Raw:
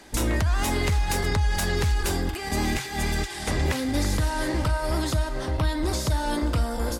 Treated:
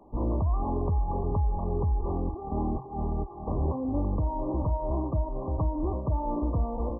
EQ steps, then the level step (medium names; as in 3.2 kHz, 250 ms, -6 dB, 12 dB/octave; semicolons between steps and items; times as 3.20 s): brick-wall FIR low-pass 1.2 kHz; -3.0 dB